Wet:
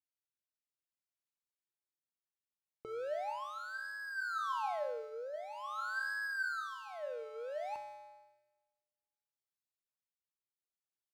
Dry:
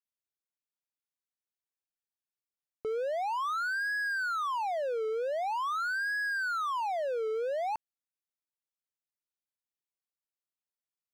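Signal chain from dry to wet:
0:04.79–0:05.34: running median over 15 samples
notch filter 430 Hz, Q 12
tuned comb filter 120 Hz, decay 1.4 s, harmonics odd, mix 90%
rotating-speaker cabinet horn 0.6 Hz
repeating echo 63 ms, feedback 57%, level −21 dB
level +12 dB

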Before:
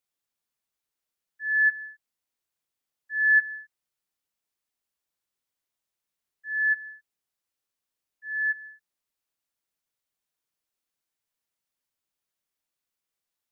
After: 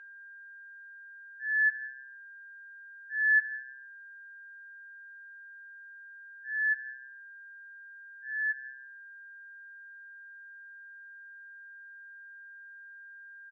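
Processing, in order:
steady tone 1,600 Hz −42 dBFS
convolution reverb RT60 1.2 s, pre-delay 3 ms, DRR 11 dB
downsampling to 32,000 Hz
level −8.5 dB

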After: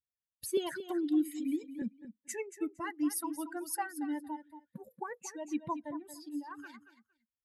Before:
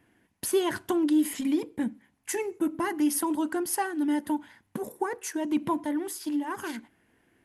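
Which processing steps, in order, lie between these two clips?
spectral dynamics exaggerated over time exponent 2
0:00.57–0:01.82: Butterworth high-pass 150 Hz
repeating echo 230 ms, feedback 16%, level −12 dB
level −4.5 dB

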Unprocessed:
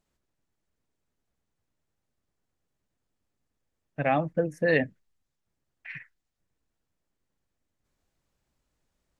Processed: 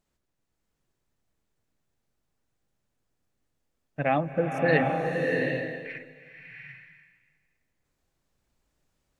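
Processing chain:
slow-attack reverb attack 750 ms, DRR 0.5 dB

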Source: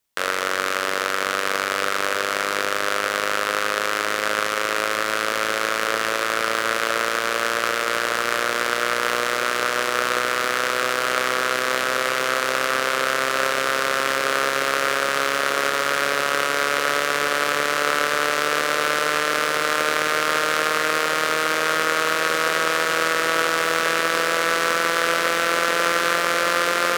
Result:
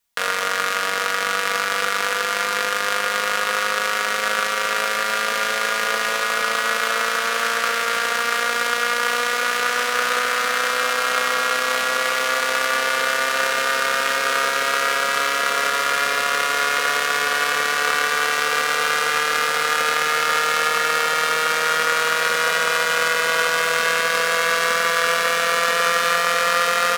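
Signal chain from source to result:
parametric band 320 Hz −11 dB 0.97 octaves
comb filter 4.2 ms, depth 83%

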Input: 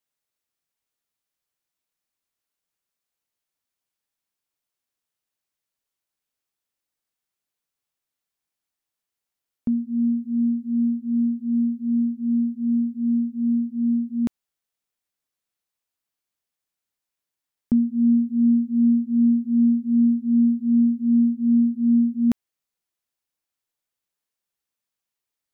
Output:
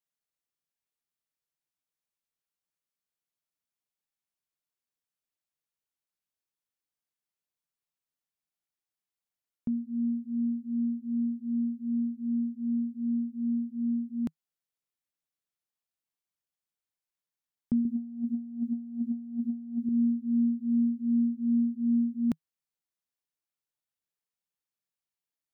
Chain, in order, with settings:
parametric band 160 Hz +6 dB 0.38 octaves
0:17.85–0:19.89: compressor whose output falls as the input rises −23 dBFS, ratio −0.5
level −8.5 dB

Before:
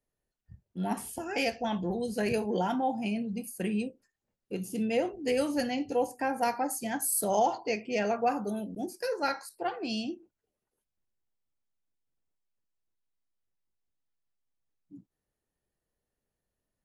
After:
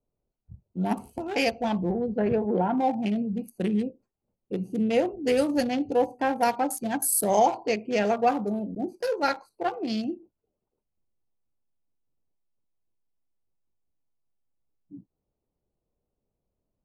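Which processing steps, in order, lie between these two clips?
adaptive Wiener filter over 25 samples
0:01.91–0:02.78: low-pass filter 1,400 Hz 12 dB per octave
level +5.5 dB

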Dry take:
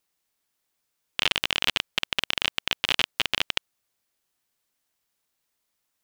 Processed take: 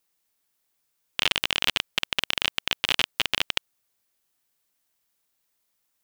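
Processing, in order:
high-shelf EQ 9,900 Hz +5.5 dB

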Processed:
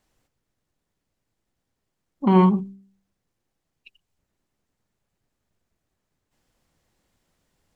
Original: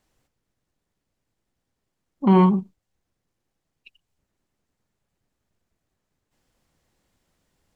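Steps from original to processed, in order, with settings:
hum removal 65.01 Hz, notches 8

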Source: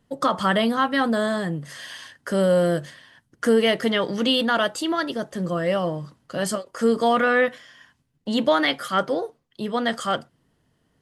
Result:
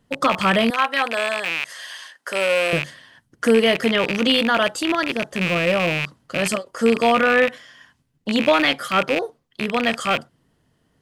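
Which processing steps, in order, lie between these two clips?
loose part that buzzes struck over −36 dBFS, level −14 dBFS
0:00.70–0:02.73: high-pass filter 590 Hz 12 dB per octave
level +2.5 dB

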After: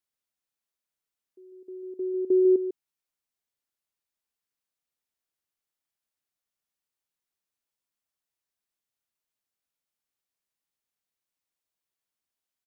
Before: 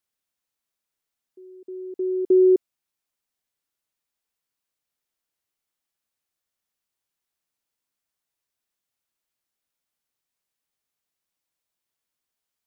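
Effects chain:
single-tap delay 148 ms −9.5 dB
level −5.5 dB

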